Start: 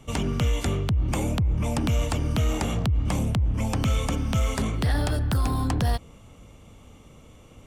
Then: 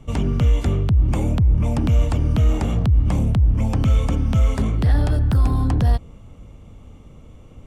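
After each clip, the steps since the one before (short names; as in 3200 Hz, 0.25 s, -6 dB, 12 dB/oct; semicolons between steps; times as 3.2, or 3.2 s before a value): tilt -2 dB/oct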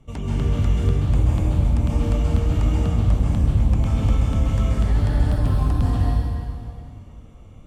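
plate-style reverb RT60 2.4 s, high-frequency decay 0.85×, pre-delay 0.12 s, DRR -5.5 dB; gain -8.5 dB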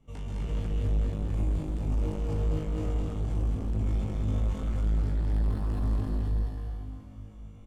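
resonator 52 Hz, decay 0.42 s, harmonics all, mix 100%; soft clip -28 dBFS, distortion -8 dB; on a send: loudspeakers at several distances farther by 72 m -3 dB, 92 m -12 dB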